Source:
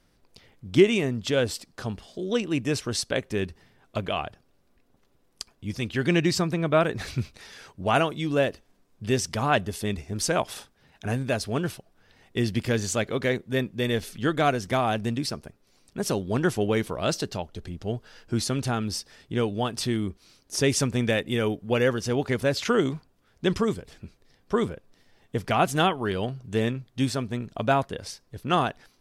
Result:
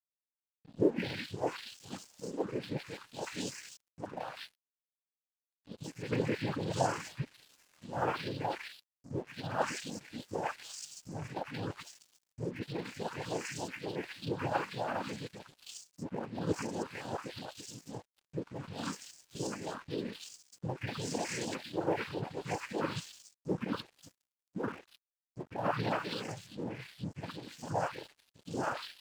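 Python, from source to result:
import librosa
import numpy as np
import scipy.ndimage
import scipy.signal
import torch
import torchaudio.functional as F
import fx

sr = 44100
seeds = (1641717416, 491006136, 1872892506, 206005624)

y = fx.spec_delay(x, sr, highs='late', ms=738)
y = fx.noise_vocoder(y, sr, seeds[0], bands=8)
y = np.sign(y) * np.maximum(np.abs(y) - 10.0 ** (-46.5 / 20.0), 0.0)
y = y * 10.0 ** (-8.0 / 20.0)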